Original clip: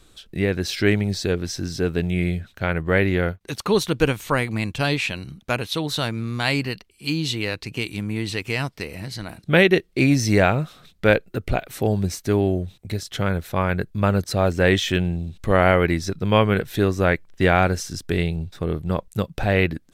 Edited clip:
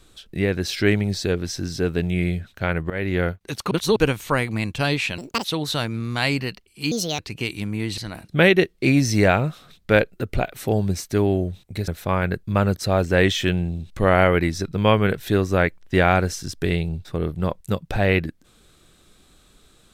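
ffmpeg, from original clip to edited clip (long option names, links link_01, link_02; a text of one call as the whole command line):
ffmpeg -i in.wav -filter_complex "[0:a]asplit=10[link_01][link_02][link_03][link_04][link_05][link_06][link_07][link_08][link_09][link_10];[link_01]atrim=end=2.9,asetpts=PTS-STARTPTS,afade=type=out:start_time=2.896:duration=0.004:curve=hsin:silence=0.141254[link_11];[link_02]atrim=start=2.9:end=3.712,asetpts=PTS-STARTPTS,afade=type=in:duration=0.3:silence=0.141254[link_12];[link_03]atrim=start=3.708:end=3.962,asetpts=PTS-STARTPTS,areverse[link_13];[link_04]atrim=start=3.958:end=5.184[link_14];[link_05]atrim=start=5.18:end=5.68,asetpts=PTS-STARTPTS,asetrate=83349,aresample=44100[link_15];[link_06]atrim=start=5.676:end=7.154[link_16];[link_07]atrim=start=7.15:end=7.55,asetpts=PTS-STARTPTS,asetrate=64827,aresample=44100[link_17];[link_08]atrim=start=7.546:end=8.342[link_18];[link_09]atrim=start=9.118:end=13.022[link_19];[link_10]atrim=start=13.348[link_20];[link_11][link_12]concat=n=2:v=0:a=1[link_21];[link_21][link_13]acrossfade=duration=0.004:curve1=hsin:curve2=hsin[link_22];[link_22][link_14]acrossfade=duration=0.004:curve1=hsin:curve2=hsin[link_23];[link_23][link_15]acrossfade=duration=0.004:curve1=hsin:curve2=hsin[link_24];[link_24][link_16]acrossfade=duration=0.004:curve1=hsin:curve2=hsin[link_25];[link_25][link_17]acrossfade=duration=0.004:curve1=hsin:curve2=hsin[link_26];[link_26][link_18]acrossfade=duration=0.004:curve1=hsin:curve2=hsin[link_27];[link_27][link_19]acrossfade=duration=0.004:curve1=hsin:curve2=hsin[link_28];[link_28][link_20]acrossfade=duration=0.004:curve1=hsin:curve2=hsin" out.wav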